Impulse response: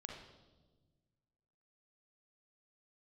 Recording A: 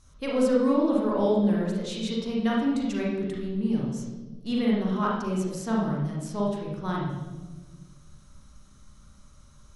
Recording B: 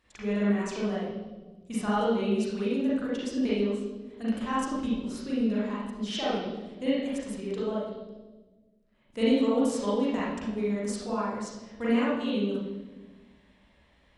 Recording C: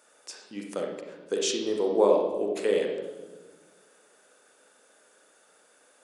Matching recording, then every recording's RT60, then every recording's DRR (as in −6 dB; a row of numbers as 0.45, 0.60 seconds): C; 1.3, 1.3, 1.3 seconds; −4.0, −8.5, 0.5 decibels